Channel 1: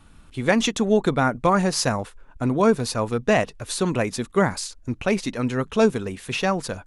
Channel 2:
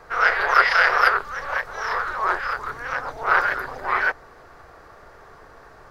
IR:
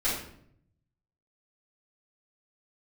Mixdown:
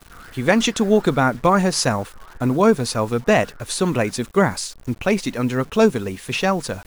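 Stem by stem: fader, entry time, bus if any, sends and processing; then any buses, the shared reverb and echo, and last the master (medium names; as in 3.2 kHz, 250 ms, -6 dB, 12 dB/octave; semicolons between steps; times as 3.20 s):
+3.0 dB, 0.00 s, no send, bit crusher 8-bit
-14.0 dB, 0.00 s, no send, hard clipper -17 dBFS, distortion -8 dB; auto duck -10 dB, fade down 0.25 s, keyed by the first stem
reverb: none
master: none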